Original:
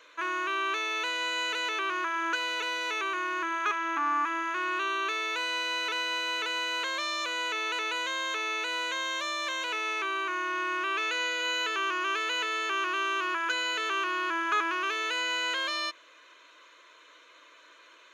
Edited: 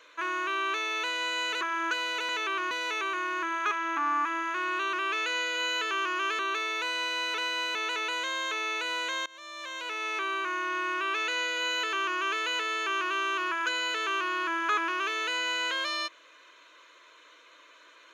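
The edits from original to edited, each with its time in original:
0:01.61–0:02.03: move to 0:02.71
0:06.29–0:07.58: remove
0:09.09–0:10.04: fade in, from −23.5 dB
0:10.78–0:12.24: duplicate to 0:04.93

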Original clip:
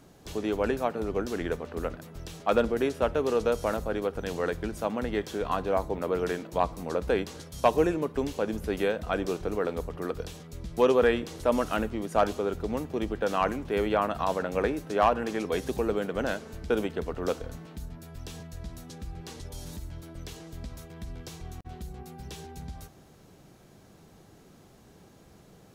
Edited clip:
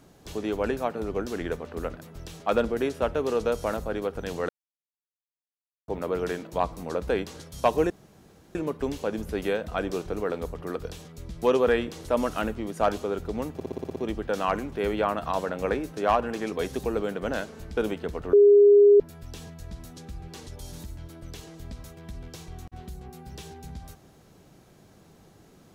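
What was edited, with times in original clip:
0:04.49–0:05.88: silence
0:07.90: splice in room tone 0.65 s
0:12.89: stutter 0.06 s, 8 plays
0:17.26–0:17.93: beep over 408 Hz −11.5 dBFS

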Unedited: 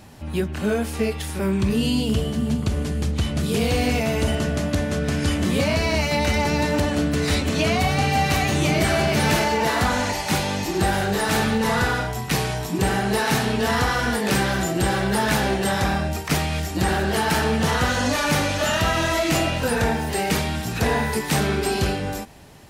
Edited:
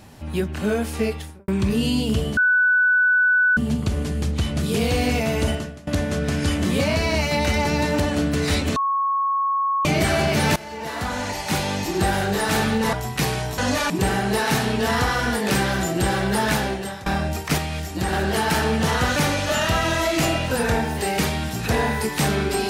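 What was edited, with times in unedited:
0:01.07–0:01.48: fade out and dull
0:02.37: insert tone 1,490 Hz −14 dBFS 1.20 s
0:04.30–0:04.67: fade out quadratic, to −21 dB
0:07.56–0:08.65: beep over 1,100 Hz −18.5 dBFS
0:09.36–0:10.49: fade in, from −19.5 dB
0:11.73–0:12.05: remove
0:15.30–0:15.86: fade out, to −20 dB
0:16.38–0:16.93: clip gain −3 dB
0:17.96–0:18.28: move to 0:12.70

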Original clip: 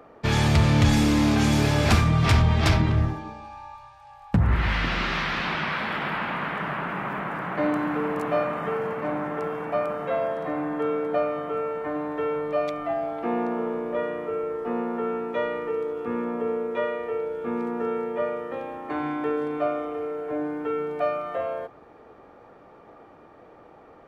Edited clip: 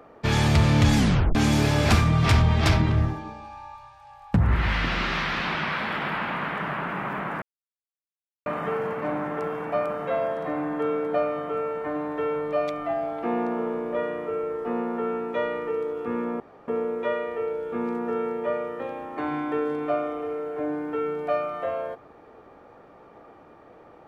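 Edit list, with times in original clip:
0:00.97: tape stop 0.38 s
0:07.42–0:08.46: silence
0:16.40: splice in room tone 0.28 s

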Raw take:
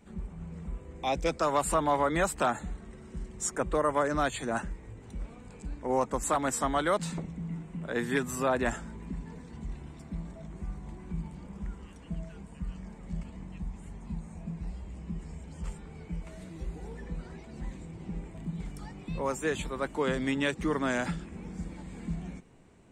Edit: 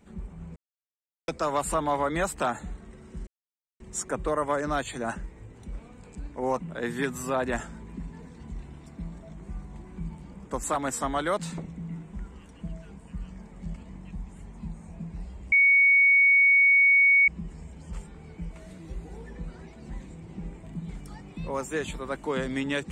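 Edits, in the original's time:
0:00.56–0:01.28: silence
0:03.27: splice in silence 0.53 s
0:06.07–0:07.73: move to 0:11.60
0:14.99: insert tone 2,230 Hz −15.5 dBFS 1.76 s

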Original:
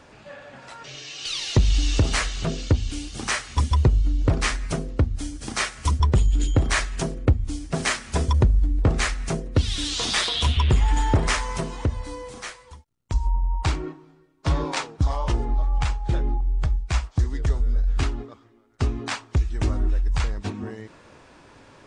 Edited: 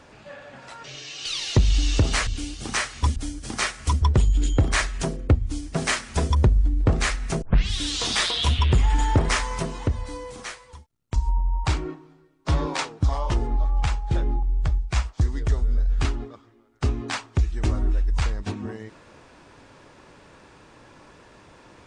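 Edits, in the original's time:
0:02.27–0:02.81: remove
0:03.70–0:05.14: remove
0:09.40: tape start 0.29 s

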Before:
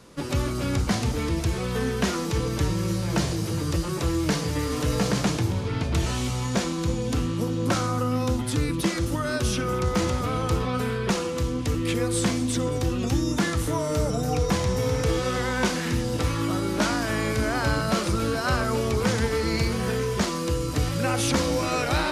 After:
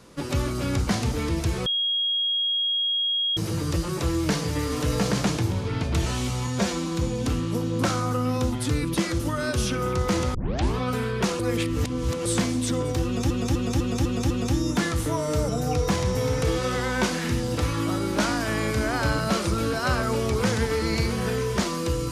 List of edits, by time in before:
0:01.66–0:03.37: beep over 3,280 Hz −21.5 dBFS
0:06.47–0:06.74: time-stretch 1.5×
0:10.21: tape start 0.42 s
0:11.26–0:12.12: reverse
0:12.92–0:13.17: repeat, 6 plays

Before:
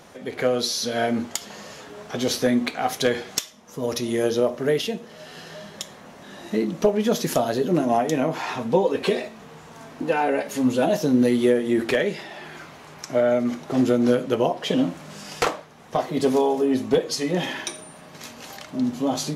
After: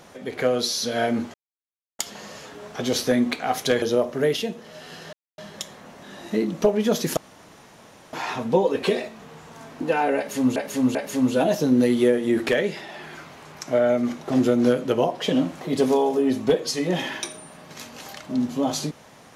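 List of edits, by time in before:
0:01.34: splice in silence 0.65 s
0:03.17–0:04.27: remove
0:05.58: splice in silence 0.25 s
0:07.37–0:08.33: fill with room tone
0:10.37–0:10.76: repeat, 3 plays
0:15.03–0:16.05: remove

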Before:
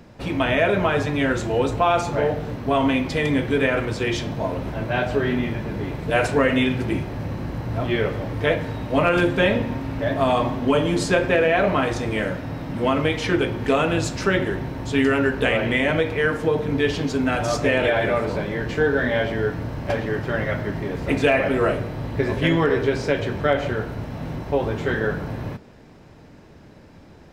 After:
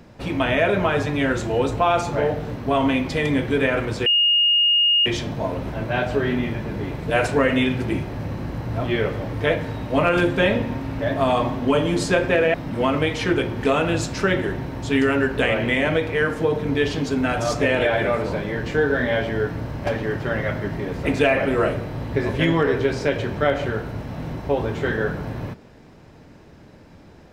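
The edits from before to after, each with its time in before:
0:04.06: insert tone 2,850 Hz −14 dBFS 1.00 s
0:11.54–0:12.57: remove

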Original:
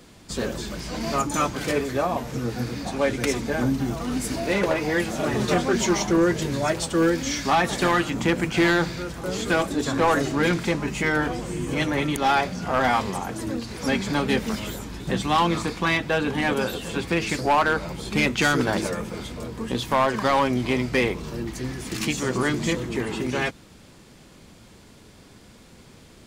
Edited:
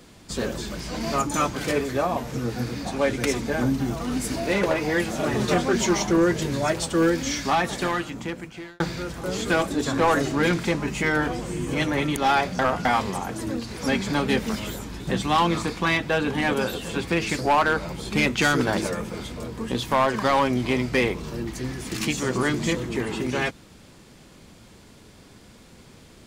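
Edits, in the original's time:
0:07.28–0:08.80: fade out
0:12.59–0:12.85: reverse

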